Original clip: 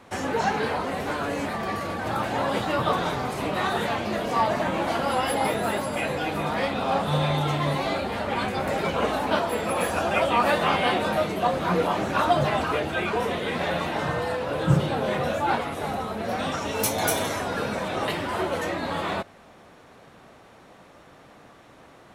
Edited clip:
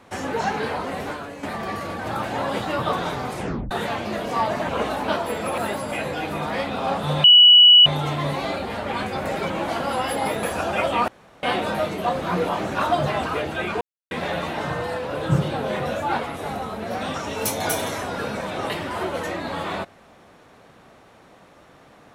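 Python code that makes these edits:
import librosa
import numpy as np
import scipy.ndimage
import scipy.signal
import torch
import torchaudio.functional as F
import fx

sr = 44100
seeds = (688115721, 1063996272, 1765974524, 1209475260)

y = fx.edit(x, sr, fx.fade_out_to(start_s=1.05, length_s=0.38, curve='qua', floor_db=-9.5),
    fx.tape_stop(start_s=3.35, length_s=0.36),
    fx.swap(start_s=4.69, length_s=0.93, other_s=8.92, other_length_s=0.89),
    fx.insert_tone(at_s=7.28, length_s=0.62, hz=2940.0, db=-7.0),
    fx.room_tone_fill(start_s=10.46, length_s=0.35),
    fx.silence(start_s=13.19, length_s=0.3), tone=tone)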